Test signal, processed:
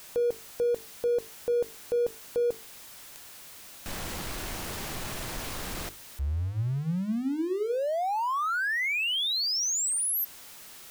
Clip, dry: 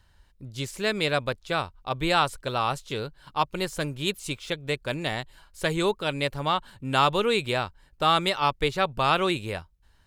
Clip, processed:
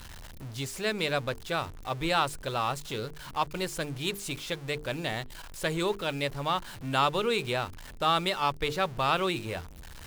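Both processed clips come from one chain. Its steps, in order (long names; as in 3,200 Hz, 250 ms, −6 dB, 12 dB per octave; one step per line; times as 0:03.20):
converter with a step at zero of −34.5 dBFS
mains-hum notches 50/100/150/200/250/300/350/400/450 Hz
level −4.5 dB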